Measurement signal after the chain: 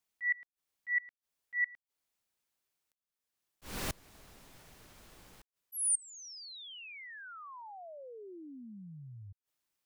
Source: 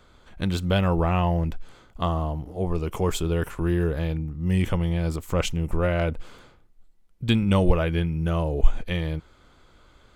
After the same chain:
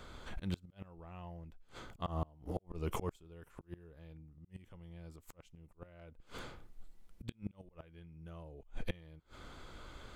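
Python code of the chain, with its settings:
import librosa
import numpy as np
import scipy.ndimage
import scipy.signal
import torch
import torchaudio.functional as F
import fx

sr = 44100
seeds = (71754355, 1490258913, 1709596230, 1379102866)

y = fx.auto_swell(x, sr, attack_ms=554.0)
y = fx.gate_flip(y, sr, shuts_db=-27.0, range_db=-29)
y = F.gain(torch.from_numpy(y), 3.5).numpy()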